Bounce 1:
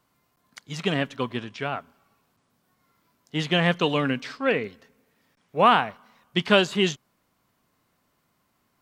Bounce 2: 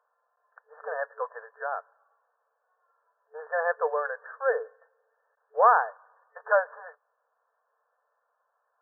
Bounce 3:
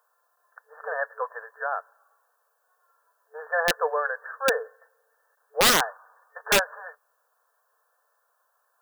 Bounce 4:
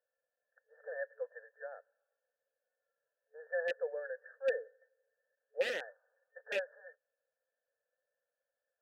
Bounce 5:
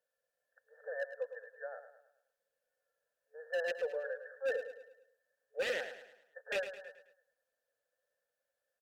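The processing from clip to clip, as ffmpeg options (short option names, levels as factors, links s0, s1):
-af "afftfilt=real='re*between(b*sr/4096,440,1800)':imag='im*between(b*sr/4096,440,1800)':win_size=4096:overlap=0.75,volume=0.891"
-af "crystalizer=i=6.5:c=0,aeval=exprs='(mod(3.98*val(0)+1,2)-1)/3.98':c=same"
-filter_complex "[0:a]asplit=3[s0][s1][s2];[s0]bandpass=f=530:t=q:w=8,volume=1[s3];[s1]bandpass=f=1840:t=q:w=8,volume=0.501[s4];[s2]bandpass=f=2480:t=q:w=8,volume=0.355[s5];[s3][s4][s5]amix=inputs=3:normalize=0,volume=0.562"
-af "volume=37.6,asoftclip=hard,volume=0.0266,aecho=1:1:107|214|321|428|535:0.299|0.131|0.0578|0.0254|0.0112,volume=1.19" -ar 48000 -c:a libopus -b:a 96k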